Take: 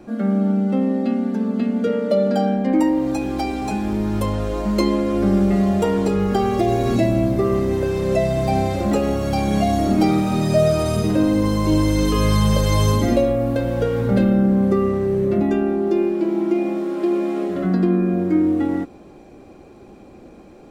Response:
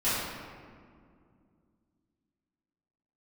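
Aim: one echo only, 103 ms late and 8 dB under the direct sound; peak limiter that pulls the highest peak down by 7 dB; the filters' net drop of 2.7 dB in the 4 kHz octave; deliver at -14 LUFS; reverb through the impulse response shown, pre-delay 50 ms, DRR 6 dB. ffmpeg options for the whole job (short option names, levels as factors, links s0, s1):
-filter_complex "[0:a]equalizer=f=4000:t=o:g=-3.5,alimiter=limit=0.237:level=0:latency=1,aecho=1:1:103:0.398,asplit=2[s0][s1];[1:a]atrim=start_sample=2205,adelay=50[s2];[s1][s2]afir=irnorm=-1:irlink=0,volume=0.126[s3];[s0][s3]amix=inputs=2:normalize=0,volume=1.58"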